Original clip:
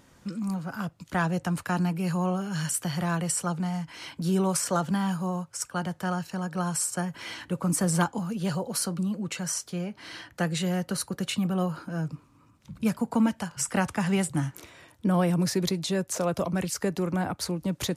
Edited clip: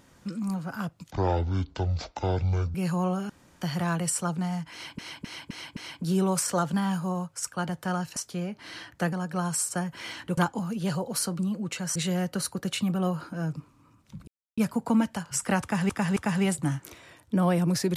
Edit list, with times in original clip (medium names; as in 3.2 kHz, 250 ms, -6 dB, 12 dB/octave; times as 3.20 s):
1.11–1.96 s: speed 52%
2.51–2.83 s: room tone
3.94–4.20 s: loop, 5 plays
7.59–7.97 s: delete
9.55–10.51 s: move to 6.34 s
12.83 s: insert silence 0.30 s
13.88–14.15 s: loop, 3 plays